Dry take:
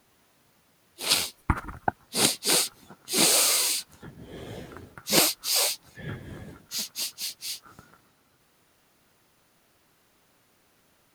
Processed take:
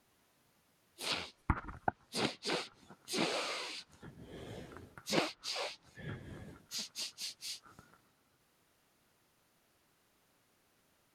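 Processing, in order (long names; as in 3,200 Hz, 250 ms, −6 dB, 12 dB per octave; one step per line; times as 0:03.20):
treble cut that deepens with the level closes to 2,700 Hz, closed at −21.5 dBFS
level −8 dB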